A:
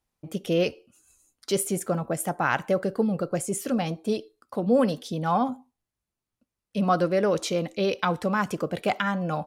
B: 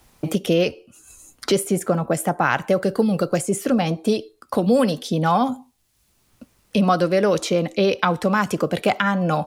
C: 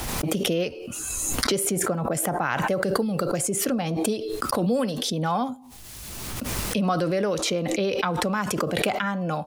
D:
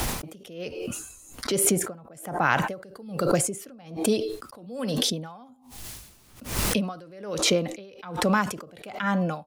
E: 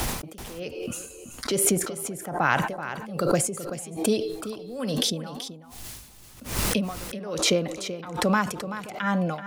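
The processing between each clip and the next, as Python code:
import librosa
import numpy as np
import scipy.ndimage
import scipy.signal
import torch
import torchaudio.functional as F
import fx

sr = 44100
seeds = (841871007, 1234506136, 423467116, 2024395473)

y1 = fx.band_squash(x, sr, depth_pct=70)
y1 = y1 * librosa.db_to_amplitude(5.5)
y2 = fx.pre_swell(y1, sr, db_per_s=22.0)
y2 = y2 * librosa.db_to_amplitude(-7.0)
y3 = y2 * 10.0 ** (-27 * (0.5 - 0.5 * np.cos(2.0 * np.pi * 1.2 * np.arange(len(y2)) / sr)) / 20.0)
y3 = y3 * librosa.db_to_amplitude(4.5)
y4 = y3 + 10.0 ** (-11.5 / 20.0) * np.pad(y3, (int(381 * sr / 1000.0), 0))[:len(y3)]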